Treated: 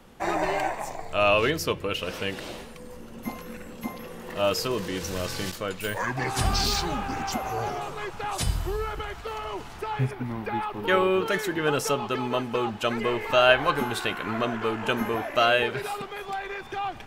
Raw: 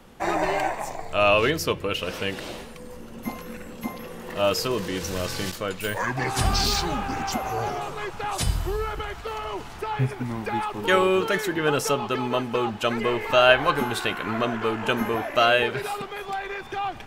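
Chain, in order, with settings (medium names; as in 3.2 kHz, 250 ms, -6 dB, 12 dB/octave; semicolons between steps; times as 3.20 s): 10.11–11.26 s: peaking EQ 7.5 kHz -10.5 dB 1.2 oct; trim -2 dB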